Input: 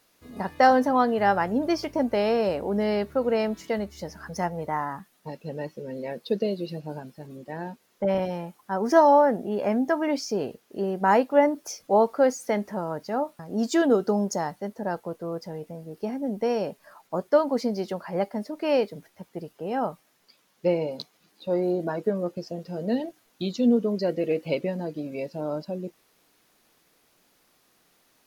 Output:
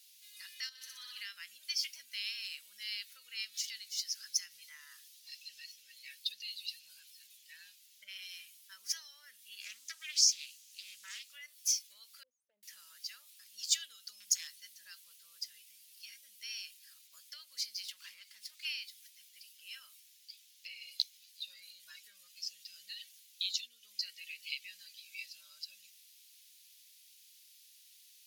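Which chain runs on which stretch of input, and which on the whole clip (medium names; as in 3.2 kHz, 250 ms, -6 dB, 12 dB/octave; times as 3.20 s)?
0.69–1.21 s: flutter echo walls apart 10.4 m, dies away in 1.1 s + level held to a coarse grid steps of 13 dB
3.44–5.72 s: peaking EQ 5.1 kHz +5.5 dB 0.92 oct + compression 3:1, threshold -29 dBFS
9.60–11.32 s: peaking EQ 6.9 kHz +8 dB 0.83 oct + hum notches 50/100/150/200/250/300/350 Hz + loudspeaker Doppler distortion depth 0.27 ms
12.23–12.63 s: resonances exaggerated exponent 1.5 + elliptic low-pass 840 Hz, stop band 50 dB
14.20–14.80 s: bass shelf 160 Hz +11 dB + hum notches 50/100/150/200/250/300/350/400/450 Hz + hard clipper -21.5 dBFS
17.82–18.65 s: peaking EQ 1 kHz +8 dB + compression, threshold -28 dBFS + sliding maximum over 3 samples
whole clip: compression 5:1, threshold -24 dBFS; inverse Chebyshev high-pass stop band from 850 Hz, stop band 60 dB; trim +6.5 dB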